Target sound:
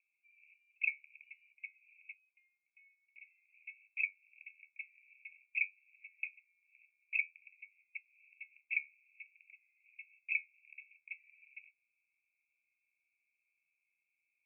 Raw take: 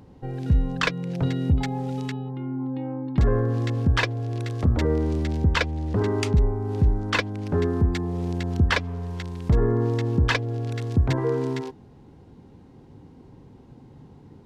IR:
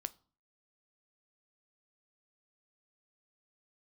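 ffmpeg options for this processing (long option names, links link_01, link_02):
-af "flanger=delay=9.4:depth=4.6:regen=67:speed=0.51:shape=triangular,asuperpass=centerf=2400:order=12:qfactor=5.2,volume=2.5dB"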